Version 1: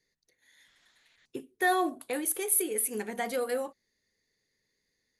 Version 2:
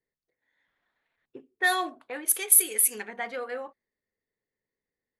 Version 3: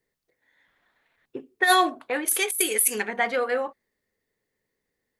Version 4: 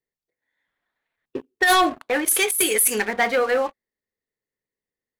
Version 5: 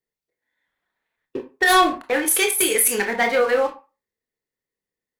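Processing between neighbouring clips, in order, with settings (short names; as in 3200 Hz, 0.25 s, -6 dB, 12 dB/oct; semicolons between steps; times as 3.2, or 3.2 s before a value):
tilt shelf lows -9 dB, about 870 Hz; low-pass opened by the level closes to 710 Hz, open at -17.5 dBFS
negative-ratio compressor -24 dBFS, ratio -0.5; gain +6 dB
sample leveller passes 3; gain -5.5 dB
reverb RT60 0.30 s, pre-delay 22 ms, DRR 5 dB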